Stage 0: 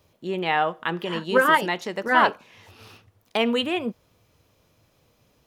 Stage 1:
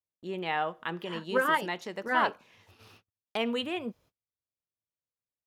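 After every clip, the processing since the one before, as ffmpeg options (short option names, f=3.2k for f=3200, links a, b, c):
-af "agate=range=-34dB:threshold=-50dB:ratio=16:detection=peak,volume=-8dB"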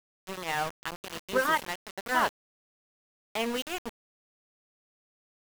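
-af "aeval=exprs='val(0)*gte(abs(val(0)),0.0299)':c=same"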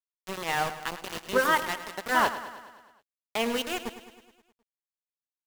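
-af "aecho=1:1:105|210|315|420|525|630|735:0.224|0.134|0.0806|0.0484|0.029|0.0174|0.0104,volume=2.5dB"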